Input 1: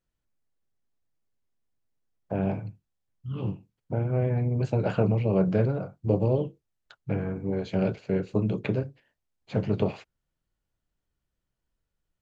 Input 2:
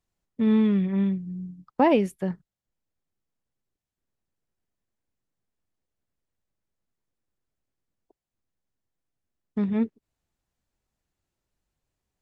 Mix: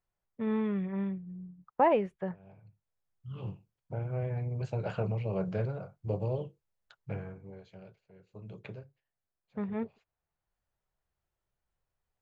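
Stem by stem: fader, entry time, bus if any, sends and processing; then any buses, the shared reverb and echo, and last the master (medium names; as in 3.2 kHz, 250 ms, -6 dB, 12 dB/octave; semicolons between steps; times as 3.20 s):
-6.5 dB, 0.00 s, no send, auto duck -23 dB, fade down 0.95 s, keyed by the second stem
-1.0 dB, 0.00 s, no send, low-pass 1.7 kHz 12 dB/octave; bass shelf 210 Hz -7.5 dB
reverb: none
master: peaking EQ 270 Hz -10.5 dB 0.82 oct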